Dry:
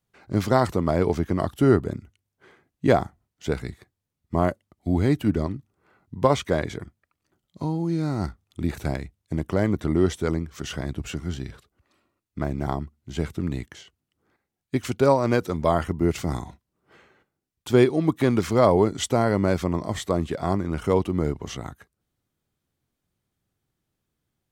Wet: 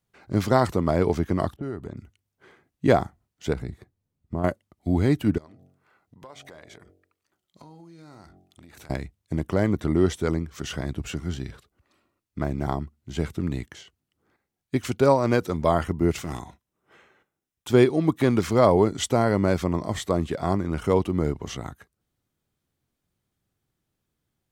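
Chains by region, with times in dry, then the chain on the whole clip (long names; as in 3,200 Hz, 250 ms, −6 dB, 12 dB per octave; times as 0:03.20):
0:01.56–0:01.97: notch filter 5,000 Hz, Q 11 + low-pass that shuts in the quiet parts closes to 420 Hz, open at −15.5 dBFS + downward compressor 4 to 1, threshold −31 dBFS
0:03.53–0:04.44: tilt shelving filter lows +5.5 dB, about 810 Hz + downward compressor 2 to 1, threshold −30 dBFS
0:05.38–0:08.90: hum removal 46.08 Hz, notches 17 + downward compressor, threshold −38 dBFS + low-shelf EQ 420 Hz −11 dB
0:16.19–0:17.69: low-shelf EQ 340 Hz −6 dB + notch filter 4,500 Hz, Q 7 + hard clipping −23 dBFS
whole clip: no processing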